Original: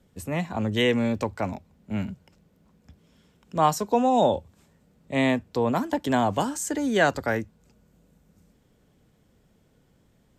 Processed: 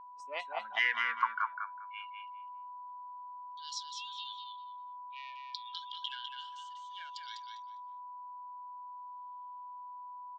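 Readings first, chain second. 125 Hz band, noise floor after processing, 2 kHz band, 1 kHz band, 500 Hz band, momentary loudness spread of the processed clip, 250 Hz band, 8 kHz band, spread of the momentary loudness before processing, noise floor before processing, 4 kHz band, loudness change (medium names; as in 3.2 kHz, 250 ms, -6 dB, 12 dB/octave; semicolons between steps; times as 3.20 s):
under -40 dB, -47 dBFS, -5.0 dB, -10.0 dB, under -25 dB, 15 LU, under -40 dB, -17.0 dB, 10 LU, -64 dBFS, -5.5 dB, -14.5 dB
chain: self-modulated delay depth 0.11 ms; treble shelf 4.1 kHz -7.5 dB; peak limiter -17.5 dBFS, peak gain reduction 9.5 dB; high-pass sweep 500 Hz -> 3.2 kHz, 0.26–2.33 s; spectral noise reduction 23 dB; LFO band-pass saw down 0.56 Hz 570–6000 Hz; whistle 990 Hz -55 dBFS; distance through air 110 m; on a send: feedback delay 201 ms, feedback 17%, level -5.5 dB; on the sum: trim +7.5 dB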